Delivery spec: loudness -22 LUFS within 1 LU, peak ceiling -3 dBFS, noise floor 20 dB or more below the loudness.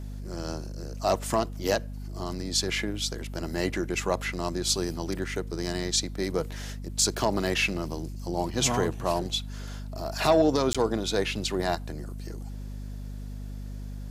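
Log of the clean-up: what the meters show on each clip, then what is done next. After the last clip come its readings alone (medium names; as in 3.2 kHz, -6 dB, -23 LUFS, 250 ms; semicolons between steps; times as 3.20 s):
dropouts 1; longest dropout 16 ms; hum 50 Hz; highest harmonic 250 Hz; hum level -34 dBFS; loudness -28.5 LUFS; peak level -9.5 dBFS; loudness target -22.0 LUFS
-> interpolate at 10.73 s, 16 ms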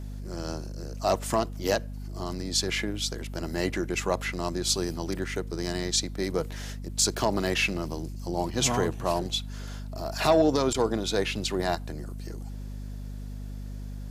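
dropouts 0; hum 50 Hz; highest harmonic 250 Hz; hum level -34 dBFS
-> de-hum 50 Hz, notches 5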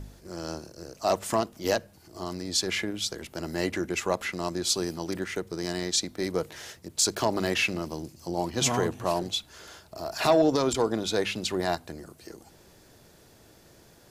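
hum not found; loudness -28.5 LUFS; peak level -10.0 dBFS; loudness target -22.0 LUFS
-> trim +6.5 dB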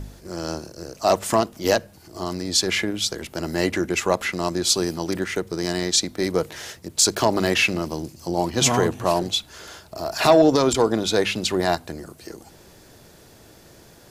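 loudness -22.0 LUFS; peak level -3.5 dBFS; noise floor -50 dBFS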